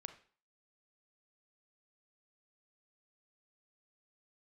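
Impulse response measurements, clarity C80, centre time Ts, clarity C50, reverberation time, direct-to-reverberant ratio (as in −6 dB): 16.0 dB, 9 ms, 11.5 dB, 0.45 s, 8.5 dB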